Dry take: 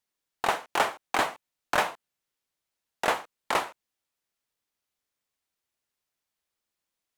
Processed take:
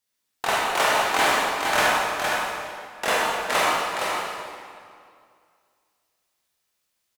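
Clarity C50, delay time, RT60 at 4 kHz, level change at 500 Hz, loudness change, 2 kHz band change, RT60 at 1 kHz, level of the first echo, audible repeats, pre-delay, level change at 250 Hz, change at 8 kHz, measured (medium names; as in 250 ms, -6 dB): -5.0 dB, 463 ms, 1.7 s, +7.5 dB, +6.0 dB, +9.0 dB, 2.2 s, -5.0 dB, 1, 19 ms, +6.5 dB, +10.5 dB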